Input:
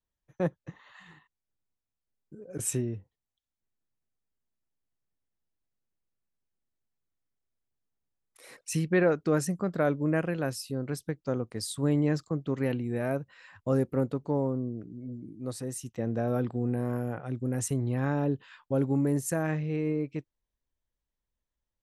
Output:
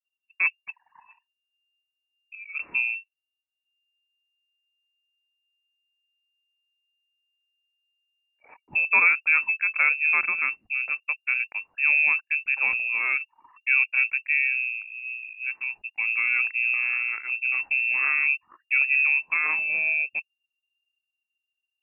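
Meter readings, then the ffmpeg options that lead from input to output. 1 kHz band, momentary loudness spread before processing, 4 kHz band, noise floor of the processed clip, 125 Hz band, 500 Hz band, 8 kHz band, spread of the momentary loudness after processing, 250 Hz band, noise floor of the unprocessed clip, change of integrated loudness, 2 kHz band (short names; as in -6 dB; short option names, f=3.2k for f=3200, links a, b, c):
+3.0 dB, 12 LU, under -15 dB, under -85 dBFS, under -35 dB, under -20 dB, under -40 dB, 12 LU, under -25 dB, under -85 dBFS, +8.0 dB, +21.0 dB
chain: -af "anlmdn=0.01,lowpass=f=2.4k:t=q:w=0.5098,lowpass=f=2.4k:t=q:w=0.6013,lowpass=f=2.4k:t=q:w=0.9,lowpass=f=2.4k:t=q:w=2.563,afreqshift=-2800,volume=4.5dB"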